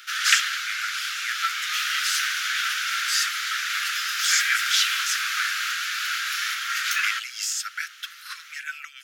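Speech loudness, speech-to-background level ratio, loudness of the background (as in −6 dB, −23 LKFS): −28.5 LKFS, −4.5 dB, −24.0 LKFS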